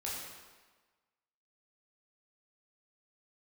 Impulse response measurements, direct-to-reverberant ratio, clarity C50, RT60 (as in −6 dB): −6.0 dB, 0.0 dB, 1.3 s